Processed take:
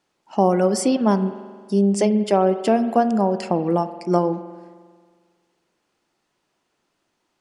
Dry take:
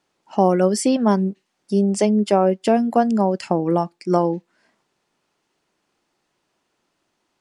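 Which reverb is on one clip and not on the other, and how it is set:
spring reverb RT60 1.7 s, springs 45 ms, chirp 35 ms, DRR 11.5 dB
level −1 dB

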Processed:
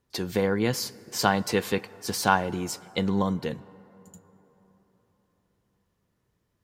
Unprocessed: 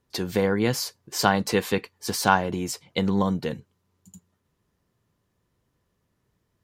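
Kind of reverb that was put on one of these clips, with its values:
dense smooth reverb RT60 4.1 s, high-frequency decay 0.4×, DRR 19.5 dB
level −2 dB

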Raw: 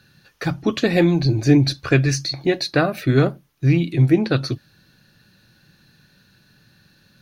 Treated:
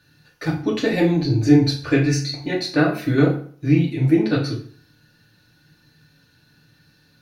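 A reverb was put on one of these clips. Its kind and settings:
feedback delay network reverb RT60 0.48 s, low-frequency decay 1×, high-frequency decay 0.8×, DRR −3.5 dB
level −6.5 dB

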